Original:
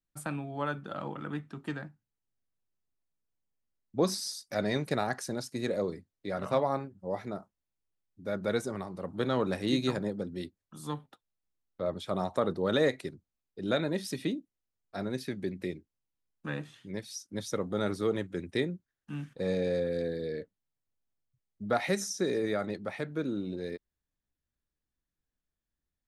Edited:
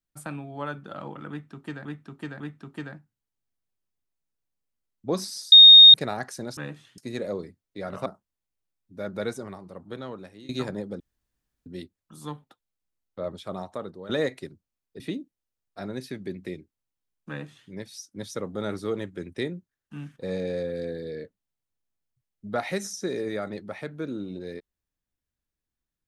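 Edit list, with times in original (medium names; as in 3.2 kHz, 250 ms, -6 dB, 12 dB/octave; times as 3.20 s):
1.30–1.85 s: loop, 3 plays
4.42–4.84 s: bleep 3.7 kHz -6 dBFS
6.55–7.34 s: delete
8.49–9.77 s: fade out, to -22.5 dB
10.28 s: insert room tone 0.66 s
11.87–12.71 s: fade out linear, to -13.5 dB
13.62–14.17 s: delete
16.46–16.87 s: copy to 5.47 s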